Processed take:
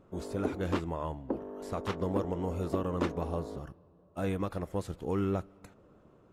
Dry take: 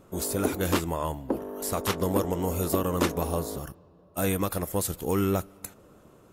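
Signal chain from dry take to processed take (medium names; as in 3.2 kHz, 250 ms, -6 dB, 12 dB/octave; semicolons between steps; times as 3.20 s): tape spacing loss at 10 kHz 21 dB; trim -4.5 dB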